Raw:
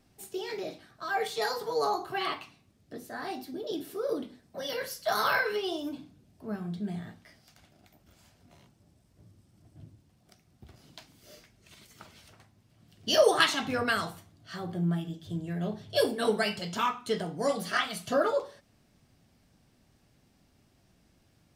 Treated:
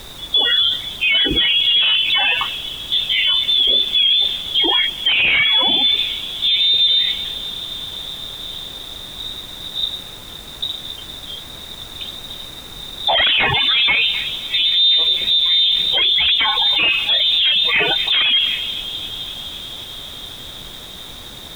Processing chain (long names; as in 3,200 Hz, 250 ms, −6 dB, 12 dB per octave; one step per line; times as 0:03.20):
spectral peaks only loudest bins 32
sine wavefolder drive 12 dB, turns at −10.5 dBFS
bucket-brigade delay 257 ms, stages 4,096, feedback 85%, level −23 dB
low-pass that shuts in the quiet parts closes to 380 Hz, open at −14 dBFS
voice inversion scrambler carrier 3,800 Hz
background noise pink −49 dBFS
boost into a limiter +18.5 dB
level −7.5 dB